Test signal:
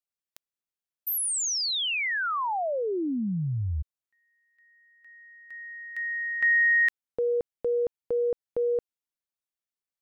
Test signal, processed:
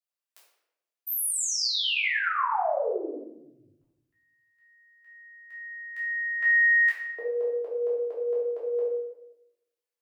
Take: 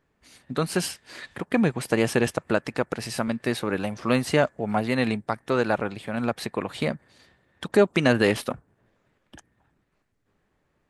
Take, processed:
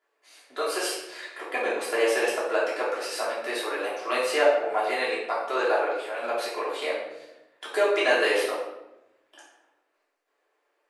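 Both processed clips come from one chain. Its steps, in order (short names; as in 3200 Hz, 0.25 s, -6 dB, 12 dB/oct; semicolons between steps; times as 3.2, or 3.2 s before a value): inverse Chebyshev high-pass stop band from 210 Hz, stop band 40 dB; shoebox room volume 310 m³, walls mixed, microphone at 3.1 m; gain -7 dB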